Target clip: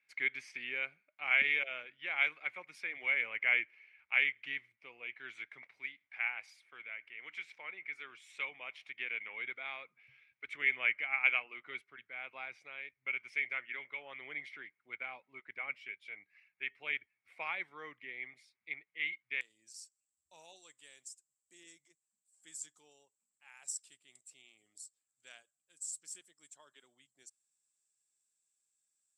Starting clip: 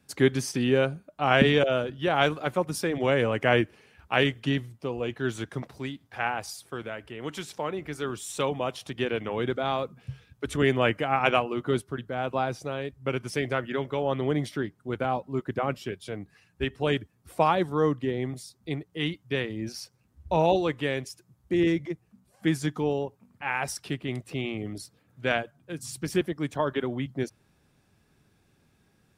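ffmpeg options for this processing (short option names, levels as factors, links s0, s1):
-af "asetnsamples=n=441:p=0,asendcmd='19.41 bandpass f 7700',bandpass=f=2200:t=q:w=13:csg=0,volume=2.37"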